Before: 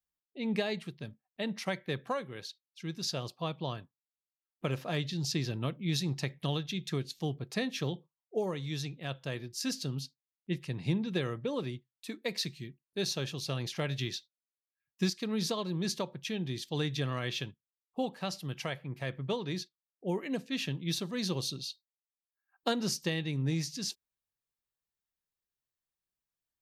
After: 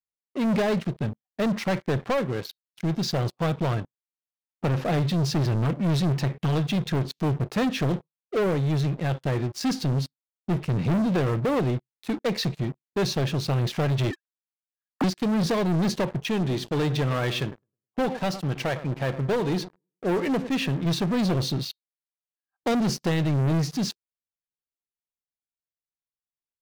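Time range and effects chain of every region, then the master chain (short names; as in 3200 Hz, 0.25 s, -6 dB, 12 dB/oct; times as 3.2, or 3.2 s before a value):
14.11–15.04 sine-wave speech + steep low-pass 1800 Hz
16.24–20.86 low shelf 200 Hz -8 dB + analogue delay 0.105 s, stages 1024, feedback 35%, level -17.5 dB
whole clip: LPF 1000 Hz 6 dB/oct; sample leveller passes 5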